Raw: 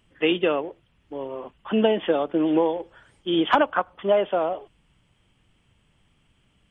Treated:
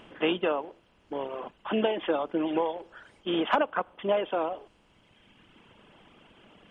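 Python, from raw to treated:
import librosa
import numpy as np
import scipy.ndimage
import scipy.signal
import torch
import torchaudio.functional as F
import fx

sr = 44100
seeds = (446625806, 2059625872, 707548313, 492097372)

y = fx.bin_compress(x, sr, power=0.6)
y = fx.dereverb_blind(y, sr, rt60_s=1.9)
y = y * librosa.db_to_amplitude(-7.0)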